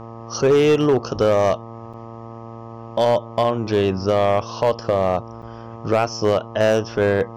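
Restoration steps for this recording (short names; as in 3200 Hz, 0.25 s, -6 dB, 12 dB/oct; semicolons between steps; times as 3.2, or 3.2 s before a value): clip repair -10.5 dBFS; de-hum 114.7 Hz, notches 11; interpolate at 1.93/5.42, 6.2 ms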